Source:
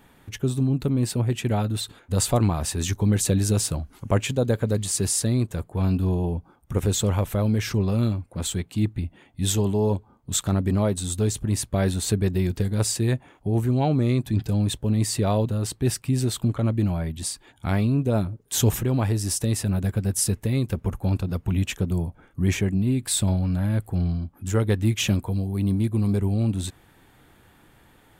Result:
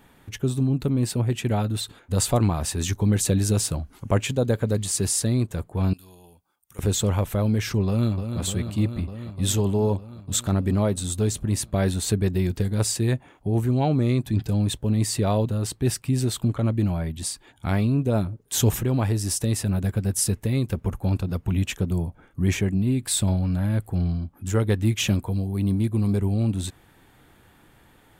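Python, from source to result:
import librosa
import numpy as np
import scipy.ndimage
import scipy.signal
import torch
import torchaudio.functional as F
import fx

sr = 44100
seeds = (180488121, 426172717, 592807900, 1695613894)

y = fx.pre_emphasis(x, sr, coefficient=0.97, at=(5.93, 6.79))
y = fx.echo_throw(y, sr, start_s=7.87, length_s=0.53, ms=300, feedback_pct=80, wet_db=-8.0)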